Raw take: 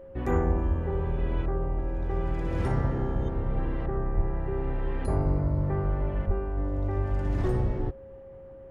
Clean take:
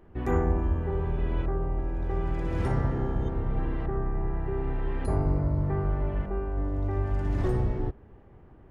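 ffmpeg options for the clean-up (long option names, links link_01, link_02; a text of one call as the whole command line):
ffmpeg -i in.wav -filter_complex "[0:a]bandreject=frequency=540:width=30,asplit=3[link_01][link_02][link_03];[link_01]afade=type=out:start_time=4.16:duration=0.02[link_04];[link_02]highpass=frequency=140:width=0.5412,highpass=frequency=140:width=1.3066,afade=type=in:start_time=4.16:duration=0.02,afade=type=out:start_time=4.28:duration=0.02[link_05];[link_03]afade=type=in:start_time=4.28:duration=0.02[link_06];[link_04][link_05][link_06]amix=inputs=3:normalize=0,asplit=3[link_07][link_08][link_09];[link_07]afade=type=out:start_time=6.26:duration=0.02[link_10];[link_08]highpass=frequency=140:width=0.5412,highpass=frequency=140:width=1.3066,afade=type=in:start_time=6.26:duration=0.02,afade=type=out:start_time=6.38:duration=0.02[link_11];[link_09]afade=type=in:start_time=6.38:duration=0.02[link_12];[link_10][link_11][link_12]amix=inputs=3:normalize=0" out.wav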